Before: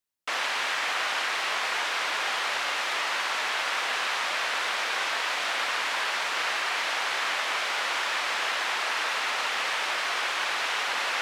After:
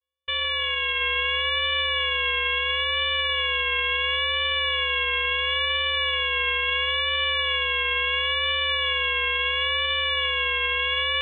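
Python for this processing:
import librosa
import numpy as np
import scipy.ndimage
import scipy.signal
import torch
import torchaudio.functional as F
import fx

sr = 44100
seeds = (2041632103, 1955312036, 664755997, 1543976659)

p1 = fx.high_shelf(x, sr, hz=2400.0, db=8.5)
p2 = fx.vocoder(p1, sr, bands=4, carrier='square', carrier_hz=290.0)
p3 = fx.freq_invert(p2, sr, carrier_hz=3700)
p4 = p3 + fx.echo_single(p3, sr, ms=731, db=-3.0, dry=0)
y = fx.vibrato(p4, sr, rate_hz=0.73, depth_cents=62.0)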